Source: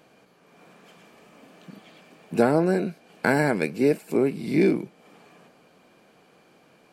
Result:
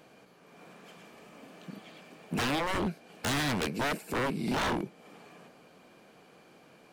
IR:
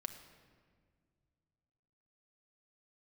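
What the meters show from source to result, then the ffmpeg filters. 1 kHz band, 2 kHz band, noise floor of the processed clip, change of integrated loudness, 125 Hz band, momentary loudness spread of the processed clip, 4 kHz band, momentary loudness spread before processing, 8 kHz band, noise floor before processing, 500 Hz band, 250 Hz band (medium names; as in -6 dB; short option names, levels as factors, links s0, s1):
-2.5 dB, -4.5 dB, -58 dBFS, -8.0 dB, -6.5 dB, 19 LU, +7.5 dB, 9 LU, +3.5 dB, -58 dBFS, -12.5 dB, -10.0 dB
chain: -af "aeval=exprs='0.0596*(abs(mod(val(0)/0.0596+3,4)-2)-1)':c=same"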